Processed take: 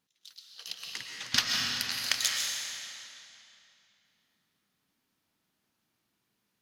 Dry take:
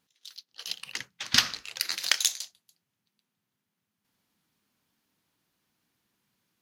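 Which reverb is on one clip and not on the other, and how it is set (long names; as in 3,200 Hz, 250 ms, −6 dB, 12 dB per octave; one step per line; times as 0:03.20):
comb and all-pass reverb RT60 2.8 s, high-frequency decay 0.9×, pre-delay 90 ms, DRR −1 dB
level −5 dB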